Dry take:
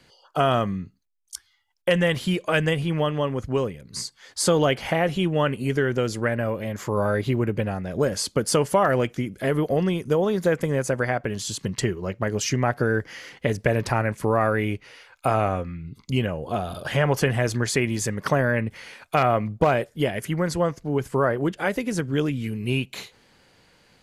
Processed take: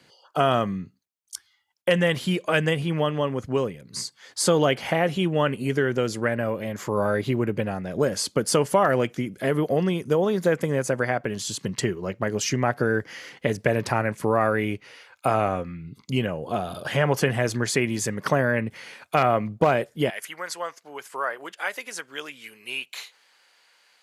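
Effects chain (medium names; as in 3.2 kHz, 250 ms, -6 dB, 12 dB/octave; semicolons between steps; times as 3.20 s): high-pass 120 Hz 12 dB/octave, from 20.10 s 960 Hz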